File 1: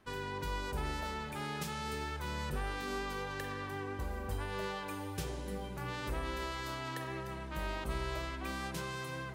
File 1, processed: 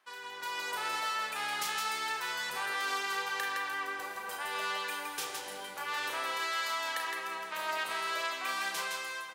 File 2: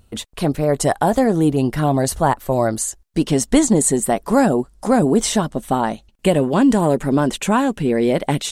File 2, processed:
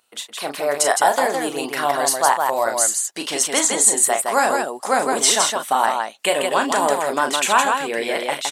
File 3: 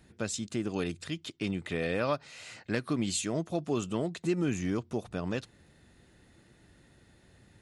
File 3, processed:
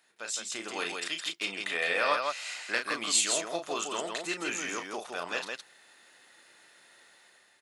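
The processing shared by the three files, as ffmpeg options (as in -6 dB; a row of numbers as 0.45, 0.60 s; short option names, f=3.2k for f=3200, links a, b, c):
-filter_complex "[0:a]highpass=880,dynaudnorm=f=100:g=9:m=8dB,asplit=2[a][b];[b]aecho=0:1:34.99|163.3:0.447|0.631[c];[a][c]amix=inputs=2:normalize=0,volume=-1dB"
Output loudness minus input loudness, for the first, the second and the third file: +5.0, -0.5, +2.0 LU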